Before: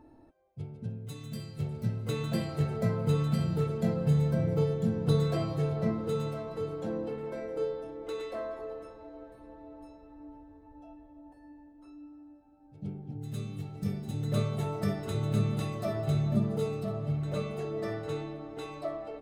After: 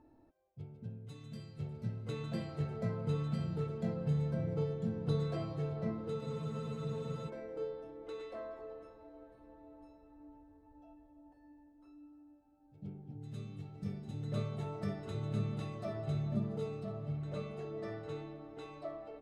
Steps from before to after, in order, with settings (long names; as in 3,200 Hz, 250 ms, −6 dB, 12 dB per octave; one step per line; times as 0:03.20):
high-frequency loss of the air 63 metres
frozen spectrum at 0:06.22, 1.06 s
level −7.5 dB